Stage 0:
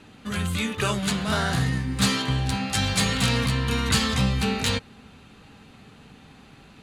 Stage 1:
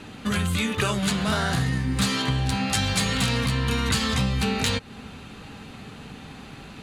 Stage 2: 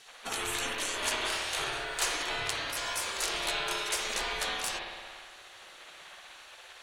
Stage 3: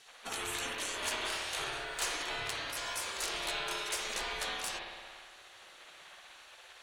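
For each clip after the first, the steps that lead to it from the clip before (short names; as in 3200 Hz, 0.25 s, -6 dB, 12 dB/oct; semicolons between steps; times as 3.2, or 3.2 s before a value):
compressor 4:1, threshold -30 dBFS, peak gain reduction 11.5 dB; gain +8 dB
frequency shift -350 Hz; spectral gate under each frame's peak -20 dB weak; spring tank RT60 1.7 s, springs 57 ms, chirp 45 ms, DRR -0.5 dB
one-sided clip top -24.5 dBFS; gain -4 dB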